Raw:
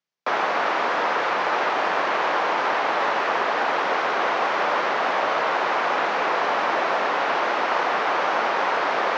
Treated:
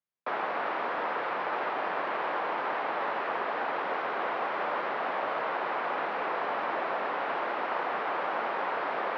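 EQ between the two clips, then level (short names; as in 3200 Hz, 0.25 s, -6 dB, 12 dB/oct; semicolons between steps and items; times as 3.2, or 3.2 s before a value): air absorption 280 m; -7.5 dB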